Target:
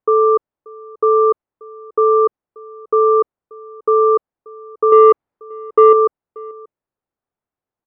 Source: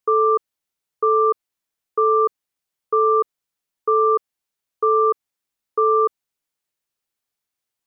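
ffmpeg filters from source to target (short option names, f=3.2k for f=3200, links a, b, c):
-filter_complex "[0:a]lowpass=1k,asettb=1/sr,asplit=3[a][b][c];[a]atrim=end=4.924[d];[b]atrim=start=4.92:end=5.93,asetpts=PTS-STARTPTS,afade=t=in:d=0.004:c=qsin,afade=t=out:st=1.006:d=0.004:c=qsin,acontrast=46[e];[c]atrim=start=5.926[f];[d][e]acrossfade=d=0.004:c1=hsin:c2=qsin[g];[g][f]acrossfade=d=0.004:c1=qsin:c2=hsin,asplit=2[h][i];[i]adelay=583.1,volume=-23dB,highshelf=f=4k:g=-13.1[j];[h][j]amix=inputs=2:normalize=0,volume=6dB"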